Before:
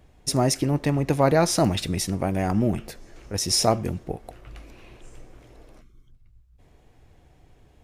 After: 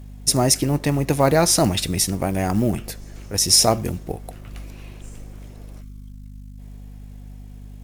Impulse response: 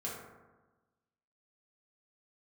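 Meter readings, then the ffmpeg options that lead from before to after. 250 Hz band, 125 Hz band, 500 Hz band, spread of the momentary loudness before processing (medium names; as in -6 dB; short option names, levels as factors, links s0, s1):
+2.0 dB, +2.5 dB, +2.0 dB, 13 LU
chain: -af "aeval=exprs='val(0)+0.0112*(sin(2*PI*50*n/s)+sin(2*PI*2*50*n/s)/2+sin(2*PI*3*50*n/s)/3+sin(2*PI*4*50*n/s)/4+sin(2*PI*5*50*n/s)/5)':c=same,acrusher=bits=9:mode=log:mix=0:aa=0.000001,aemphasis=mode=production:type=cd,volume=1.33"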